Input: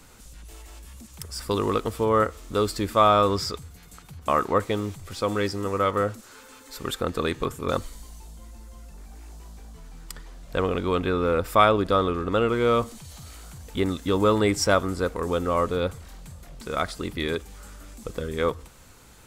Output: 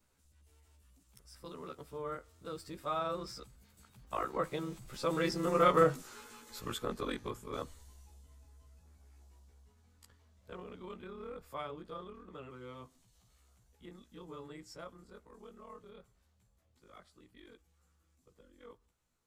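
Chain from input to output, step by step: short-time reversal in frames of 32 ms; Doppler pass-by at 5.81, 12 m/s, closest 5.6 m; gain +1 dB

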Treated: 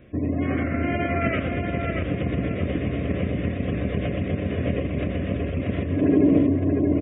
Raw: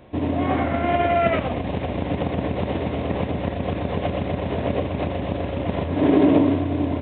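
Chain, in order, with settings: spectral gate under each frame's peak -30 dB strong; fixed phaser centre 2100 Hz, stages 4; feedback echo 0.634 s, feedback 32%, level -5 dB

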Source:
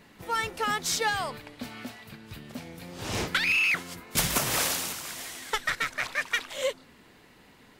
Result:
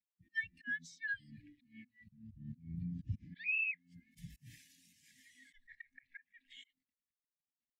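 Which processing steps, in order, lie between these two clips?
5.95–6.45 high shelf 3800 Hz -8 dB; requantised 8-bit, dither none; 2.01–3.18 bell 70 Hz +9.5 dB 2.4 oct; auto swell 0.203 s; brick-wall FIR band-stop 330–1600 Hz; compressor 10:1, threshold -39 dBFS, peak gain reduction 16.5 dB; spectral expander 2.5:1; gain -1 dB

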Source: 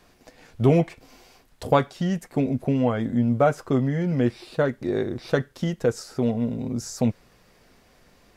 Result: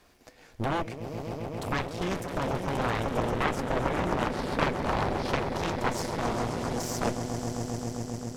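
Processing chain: bell 160 Hz -4.5 dB 1 oct; limiter -17.5 dBFS, peak gain reduction 10 dB; on a send: swelling echo 0.133 s, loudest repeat 5, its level -10.5 dB; on the sum: crackle 140/s -53 dBFS; added harmonics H 3 -8 dB, 6 -15 dB, 7 -26 dB, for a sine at -12 dBFS; gain +2 dB

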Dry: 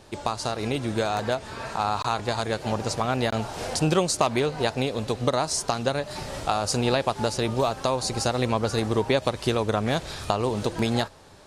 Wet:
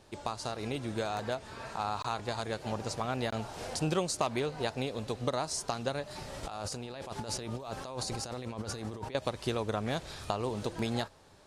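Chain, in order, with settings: 6.43–9.15 negative-ratio compressor -31 dBFS, ratio -1; gain -8.5 dB

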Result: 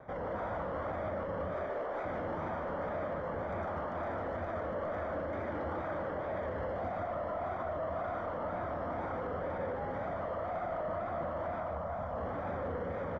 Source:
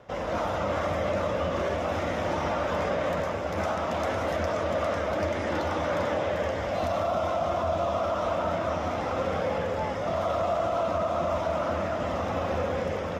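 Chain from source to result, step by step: 1.54–2.05 HPF 340 Hz 24 dB/oct; limiter -25 dBFS, peak gain reduction 7.5 dB; 11.6–12.18 fixed phaser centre 840 Hz, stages 4; soft clip -34.5 dBFS, distortion -11 dB; polynomial smoothing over 41 samples; wow and flutter 120 cents; echo 0.15 s -5 dB

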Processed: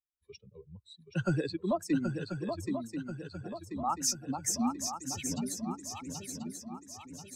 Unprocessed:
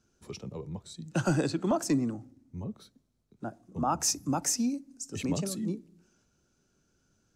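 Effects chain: per-bin expansion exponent 2; on a send: swung echo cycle 1.036 s, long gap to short 3:1, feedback 50%, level -6 dB

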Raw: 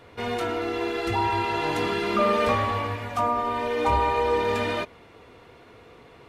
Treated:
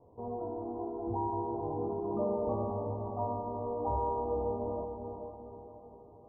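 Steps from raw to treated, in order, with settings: steep low-pass 1000 Hz 72 dB/oct; on a send: diffused feedback echo 0.453 s, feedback 48%, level -6 dB; on the sum: gain -9 dB

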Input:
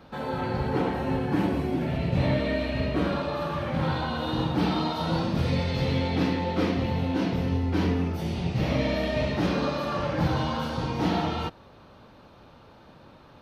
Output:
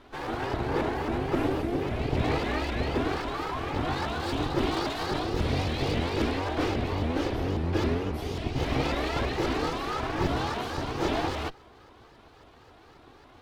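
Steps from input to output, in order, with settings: minimum comb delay 2.6 ms; shaped vibrato saw up 3.7 Hz, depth 250 cents

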